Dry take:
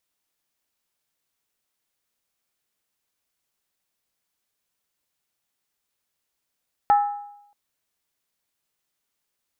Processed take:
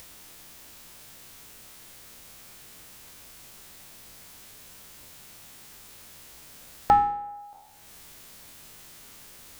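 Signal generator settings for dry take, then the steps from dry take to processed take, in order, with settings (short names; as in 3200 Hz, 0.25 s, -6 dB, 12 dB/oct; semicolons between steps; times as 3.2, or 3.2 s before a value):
skin hit, lowest mode 820 Hz, decay 0.80 s, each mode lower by 11.5 dB, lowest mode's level -11.5 dB
spectral trails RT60 0.62 s; low shelf 230 Hz +8.5 dB; upward compressor, threshold -25 dBFS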